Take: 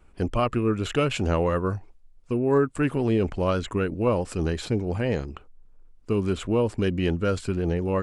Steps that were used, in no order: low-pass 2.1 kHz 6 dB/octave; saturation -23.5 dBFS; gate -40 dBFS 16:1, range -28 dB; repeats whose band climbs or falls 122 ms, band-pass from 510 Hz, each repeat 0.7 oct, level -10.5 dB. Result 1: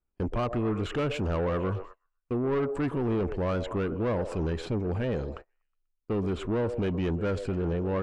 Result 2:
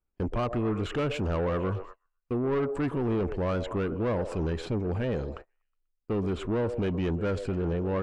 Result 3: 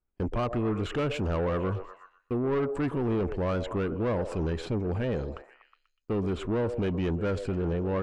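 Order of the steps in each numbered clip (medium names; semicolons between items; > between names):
repeats whose band climbs or falls > saturation > gate > low-pass; repeats whose band climbs or falls > gate > saturation > low-pass; gate > repeats whose band climbs or falls > saturation > low-pass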